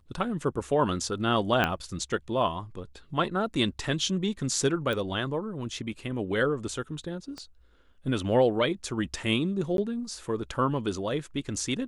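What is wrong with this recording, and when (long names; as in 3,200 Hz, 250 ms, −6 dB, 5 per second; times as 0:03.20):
0:01.64: click −11 dBFS
0:04.93: click −19 dBFS
0:07.38: click −26 dBFS
0:09.77–0:09.78: drop-out 12 ms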